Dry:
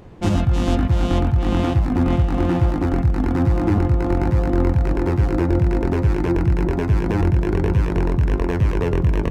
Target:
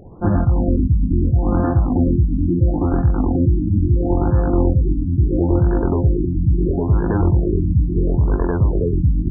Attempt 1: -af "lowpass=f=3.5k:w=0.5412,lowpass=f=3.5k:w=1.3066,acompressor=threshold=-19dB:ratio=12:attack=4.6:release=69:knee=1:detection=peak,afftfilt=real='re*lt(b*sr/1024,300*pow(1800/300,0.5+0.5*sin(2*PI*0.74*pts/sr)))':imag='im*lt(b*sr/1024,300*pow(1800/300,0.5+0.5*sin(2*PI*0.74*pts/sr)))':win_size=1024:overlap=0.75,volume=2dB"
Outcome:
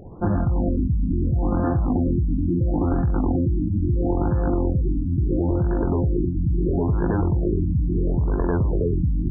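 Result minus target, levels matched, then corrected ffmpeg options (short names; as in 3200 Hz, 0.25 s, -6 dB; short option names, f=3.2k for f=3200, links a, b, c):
compressor: peak gain reduction +9 dB
-af "lowpass=f=3.5k:w=0.5412,lowpass=f=3.5k:w=1.3066,afftfilt=real='re*lt(b*sr/1024,300*pow(1800/300,0.5+0.5*sin(2*PI*0.74*pts/sr)))':imag='im*lt(b*sr/1024,300*pow(1800/300,0.5+0.5*sin(2*PI*0.74*pts/sr)))':win_size=1024:overlap=0.75,volume=2dB"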